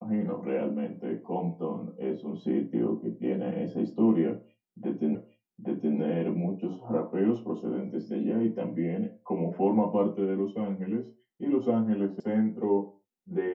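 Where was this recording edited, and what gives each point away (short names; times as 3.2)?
5.15 repeat of the last 0.82 s
12.2 sound cut off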